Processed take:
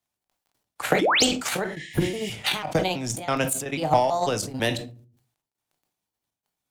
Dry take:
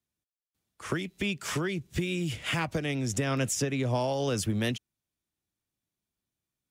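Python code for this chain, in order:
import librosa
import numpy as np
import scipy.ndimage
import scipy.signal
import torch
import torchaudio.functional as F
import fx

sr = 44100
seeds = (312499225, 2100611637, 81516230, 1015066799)

p1 = fx.pitch_trill(x, sr, semitones=4.0, every_ms=164)
p2 = fx.low_shelf(p1, sr, hz=340.0, db=-8.0)
p3 = fx.dmg_crackle(p2, sr, seeds[0], per_s=12.0, level_db=-66.0)
p4 = fx.transient(p3, sr, attack_db=10, sustain_db=-8)
p5 = fx.peak_eq(p4, sr, hz=790.0, db=8.5, octaves=0.7)
p6 = fx.spec_paint(p5, sr, seeds[1], shape='rise', start_s=1.01, length_s=0.24, low_hz=260.0, high_hz=8900.0, level_db=-24.0)
p7 = np.clip(10.0 ** (21.0 / 20.0) * p6, -1.0, 1.0) / 10.0 ** (21.0 / 20.0)
p8 = p6 + (p7 * 10.0 ** (-5.5 / 20.0))
p9 = fx.spec_repair(p8, sr, seeds[2], start_s=1.68, length_s=0.6, low_hz=1700.0, high_hz=9100.0, source='both')
p10 = fx.step_gate(p9, sr, bpm=119, pattern='xxxxx.xxxx.xx.x', floor_db=-12.0, edge_ms=4.5)
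p11 = fx.room_shoebox(p10, sr, seeds[3], volume_m3=220.0, walls='furnished', distance_m=0.43)
y = fx.sustainer(p11, sr, db_per_s=87.0)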